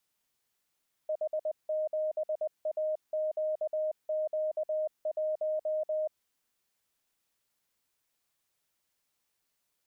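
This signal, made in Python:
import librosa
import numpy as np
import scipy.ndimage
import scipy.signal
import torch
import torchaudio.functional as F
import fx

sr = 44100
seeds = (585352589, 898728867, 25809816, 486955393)

y = fx.morse(sr, text='H7AQQ1', wpm=20, hz=620.0, level_db=-28.0)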